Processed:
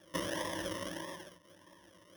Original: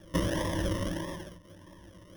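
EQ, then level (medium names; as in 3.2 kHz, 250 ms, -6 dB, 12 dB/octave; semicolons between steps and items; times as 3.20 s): high-pass 590 Hz 6 dB/octave; -2.0 dB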